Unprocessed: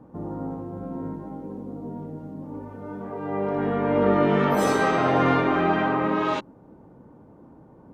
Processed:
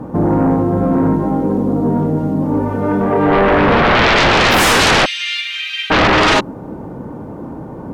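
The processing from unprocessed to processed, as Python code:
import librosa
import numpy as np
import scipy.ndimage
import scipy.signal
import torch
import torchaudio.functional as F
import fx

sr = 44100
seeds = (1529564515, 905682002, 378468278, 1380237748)

y = fx.steep_highpass(x, sr, hz=2600.0, slope=36, at=(5.04, 5.9), fade=0.02)
y = fx.fold_sine(y, sr, drive_db=17, ceiling_db=-8.0)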